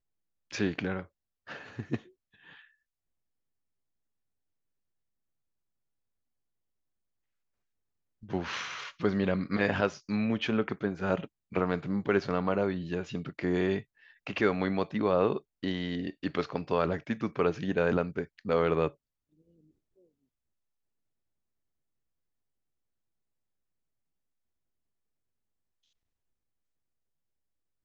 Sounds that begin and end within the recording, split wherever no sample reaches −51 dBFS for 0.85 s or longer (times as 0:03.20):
0:08.23–0:18.92